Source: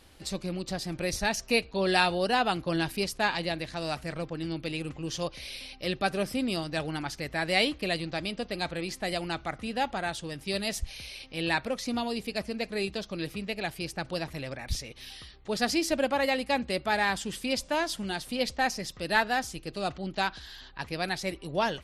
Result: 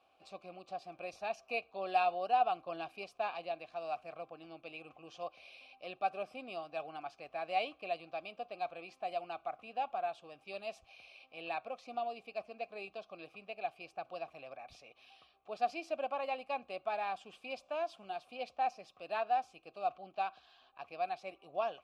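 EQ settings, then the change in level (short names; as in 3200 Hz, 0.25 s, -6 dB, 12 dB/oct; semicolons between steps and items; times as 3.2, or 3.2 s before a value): vowel filter a; +1.0 dB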